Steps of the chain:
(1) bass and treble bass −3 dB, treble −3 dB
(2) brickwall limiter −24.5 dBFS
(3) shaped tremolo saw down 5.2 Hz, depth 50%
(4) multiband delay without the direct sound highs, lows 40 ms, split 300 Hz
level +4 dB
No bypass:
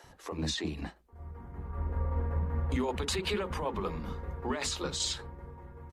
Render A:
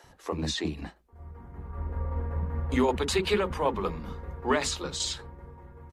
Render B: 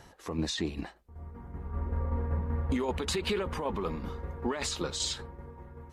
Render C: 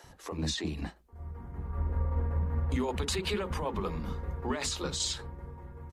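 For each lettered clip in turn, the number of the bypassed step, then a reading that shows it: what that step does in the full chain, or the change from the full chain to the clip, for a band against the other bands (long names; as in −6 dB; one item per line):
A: 2, change in crest factor +4.0 dB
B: 4, echo-to-direct ratio −23.5 dB to none audible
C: 1, 125 Hz band +2.0 dB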